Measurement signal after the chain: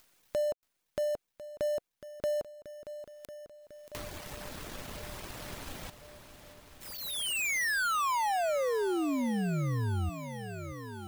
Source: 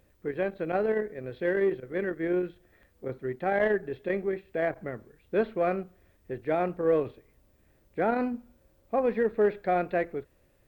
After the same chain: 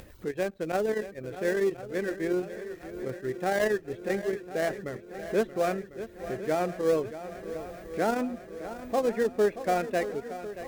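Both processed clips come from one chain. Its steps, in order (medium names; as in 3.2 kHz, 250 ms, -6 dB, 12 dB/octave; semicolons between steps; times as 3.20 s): dead-time distortion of 0.083 ms; upward compressor, threshold -35 dBFS; reverb removal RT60 0.54 s; on a send: shuffle delay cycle 1049 ms, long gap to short 1.5:1, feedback 60%, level -13 dB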